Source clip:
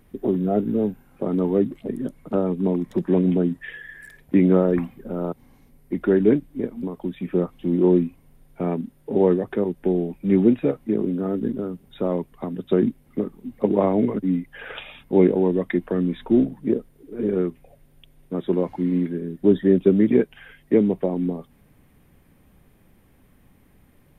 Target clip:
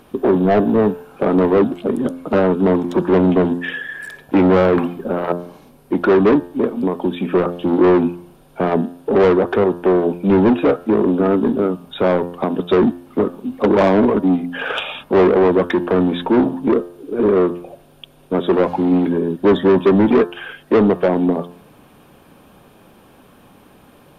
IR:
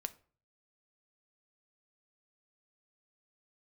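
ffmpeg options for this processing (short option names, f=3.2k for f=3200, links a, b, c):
-filter_complex "[0:a]equalizer=f=2k:t=o:w=0.34:g=-15,asplit=2[a][b];[b]highpass=f=720:p=1,volume=26dB,asoftclip=type=tanh:threshold=-4dB[c];[a][c]amix=inputs=2:normalize=0,lowpass=f=2.7k:p=1,volume=-6dB,bandreject=f=87.47:t=h:w=4,bandreject=f=174.94:t=h:w=4,bandreject=f=262.41:t=h:w=4,bandreject=f=349.88:t=h:w=4,bandreject=f=437.35:t=h:w=4,bandreject=f=524.82:t=h:w=4,bandreject=f=612.29:t=h:w=4,bandreject=f=699.76:t=h:w=4,bandreject=f=787.23:t=h:w=4,bandreject=f=874.7:t=h:w=4,bandreject=f=962.17:t=h:w=4,bandreject=f=1.04964k:t=h:w=4,bandreject=f=1.13711k:t=h:w=4,bandreject=f=1.22458k:t=h:w=4,bandreject=f=1.31205k:t=h:w=4,bandreject=f=1.39952k:t=h:w=4,bandreject=f=1.48699k:t=h:w=4,bandreject=f=1.57446k:t=h:w=4,bandreject=f=1.66193k:t=h:w=4,bandreject=f=1.7494k:t=h:w=4,bandreject=f=1.83687k:t=h:w=4"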